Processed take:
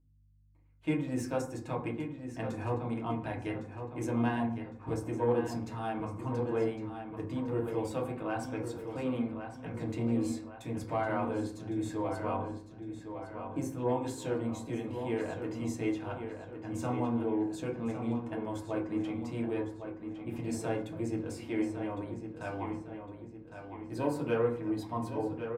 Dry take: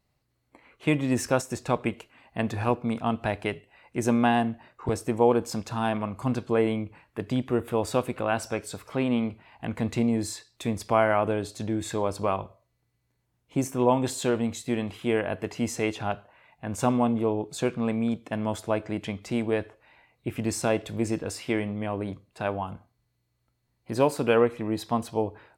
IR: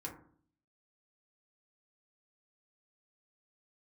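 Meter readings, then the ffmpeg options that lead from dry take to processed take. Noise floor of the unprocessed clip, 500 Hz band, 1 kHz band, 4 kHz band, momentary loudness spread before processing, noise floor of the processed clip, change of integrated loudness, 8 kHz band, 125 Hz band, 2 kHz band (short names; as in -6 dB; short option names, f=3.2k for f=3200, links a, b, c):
-75 dBFS, -7.5 dB, -8.5 dB, -12.5 dB, 10 LU, -49 dBFS, -7.5 dB, -12.5 dB, -5.5 dB, -9.5 dB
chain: -filter_complex "[0:a]agate=range=-33dB:threshold=-44dB:ratio=3:detection=peak,asoftclip=type=tanh:threshold=-9.5dB,aeval=exprs='val(0)+0.00178*(sin(2*PI*50*n/s)+sin(2*PI*2*50*n/s)/2+sin(2*PI*3*50*n/s)/3+sin(2*PI*4*50*n/s)/4+sin(2*PI*5*50*n/s)/5)':c=same,asplit=2[a][b];[b]adelay=1108,lowpass=f=4.8k:p=1,volume=-8dB,asplit=2[c][d];[d]adelay=1108,lowpass=f=4.8k:p=1,volume=0.48,asplit=2[e][f];[f]adelay=1108,lowpass=f=4.8k:p=1,volume=0.48,asplit=2[g][h];[h]adelay=1108,lowpass=f=4.8k:p=1,volume=0.48,asplit=2[i][j];[j]adelay=1108,lowpass=f=4.8k:p=1,volume=0.48,asplit=2[k][l];[l]adelay=1108,lowpass=f=4.8k:p=1,volume=0.48[m];[a][c][e][g][i][k][m]amix=inputs=7:normalize=0[n];[1:a]atrim=start_sample=2205[o];[n][o]afir=irnorm=-1:irlink=0,volume=-8dB"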